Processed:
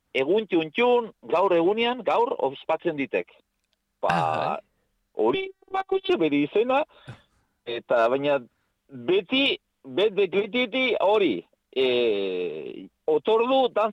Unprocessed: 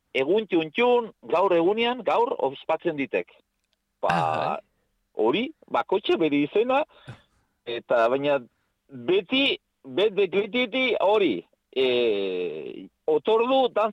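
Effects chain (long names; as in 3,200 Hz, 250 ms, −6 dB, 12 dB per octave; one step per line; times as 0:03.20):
0:05.34–0:06.10: phases set to zero 385 Hz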